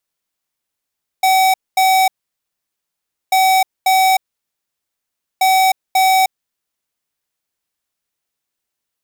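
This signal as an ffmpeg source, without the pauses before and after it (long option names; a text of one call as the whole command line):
ffmpeg -f lavfi -i "aevalsrc='0.251*(2*lt(mod(758*t,1),0.5)-1)*clip(min(mod(mod(t,2.09),0.54),0.31-mod(mod(t,2.09),0.54))/0.005,0,1)*lt(mod(t,2.09),1.08)':duration=6.27:sample_rate=44100" out.wav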